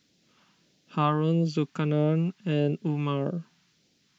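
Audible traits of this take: phasing stages 2, 1.6 Hz, lowest notch 480–1100 Hz

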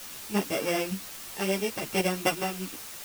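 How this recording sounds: a buzz of ramps at a fixed pitch in blocks of 16 samples; chopped level 1.1 Hz, depth 60%, duty 20%; a quantiser's noise floor 8-bit, dither triangular; a shimmering, thickened sound

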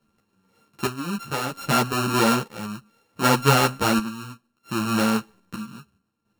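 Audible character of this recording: a buzz of ramps at a fixed pitch in blocks of 32 samples; chopped level 0.64 Hz, depth 65%, duty 55%; a shimmering, thickened sound

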